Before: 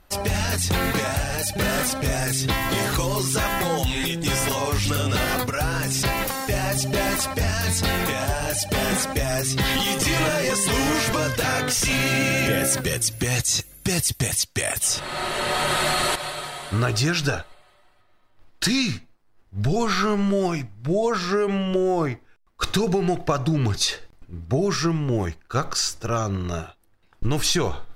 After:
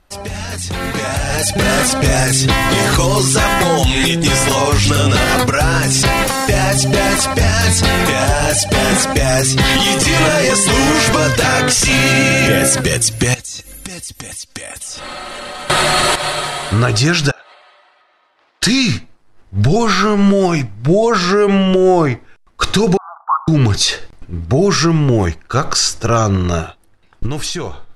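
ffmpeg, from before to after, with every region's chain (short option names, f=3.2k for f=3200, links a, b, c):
-filter_complex "[0:a]asettb=1/sr,asplit=3[a][b][c];[a]atrim=end=13.344[d];[b]atrim=start=13.34:end=15.7,asetpts=PTS-STARTPTS,afade=t=in:d=0.004:c=qsin,afade=t=out:st=2.356:d=0.004:c=qsin,acompressor=threshold=-37dB:ratio=16:attack=3.2:release=140:knee=1:detection=peak,aecho=1:1:3.8:0.56,atrim=end_sample=104076[e];[c]atrim=start=15.696[f];[d][e]acrossfade=d=0.004:c1=hsin:c2=qsin[g];[g][f]acrossfade=d=0.004:c1=qsin:c2=hsin,asettb=1/sr,asplit=3[h][i][j];[h]atrim=end=17.314[k];[i]atrim=start=17.31:end=18.63,asetpts=PTS-STARTPTS,afade=t=in:d=0.004:c=qsin,afade=t=out:st=1.316:d=0.004:c=qsin,highpass=580,lowpass=4.6k,acompressor=threshold=-47dB:ratio=6:attack=3.2:release=140:knee=1:detection=peak[l];[j]atrim=start=18.626[m];[k][l]acrossfade=d=0.004:c1=hsin:c2=qsin[n];[n][m]acrossfade=d=0.004:c1=qsin:c2=hsin,asettb=1/sr,asplit=3[o][p][q];[o]atrim=end=22.974[r];[p]atrim=start=22.97:end=23.48,asetpts=PTS-STARTPTS,afade=t=in:d=0.004:c=qsin,afade=t=out:st=0.506:d=0.004:c=qsin,asuperpass=centerf=1100:order=12:qfactor=1.9,afreqshift=-41[s];[q]atrim=start=23.476[t];[r][s]acrossfade=d=0.004:c1=hsin:c2=qsin[u];[u][t]acrossfade=d=0.004:c1=qsin:c2=hsin,lowpass=f=11k:w=0.5412,lowpass=f=11k:w=1.3066,alimiter=limit=-15.5dB:level=0:latency=1:release=131,dynaudnorm=f=180:g=13:m=13dB"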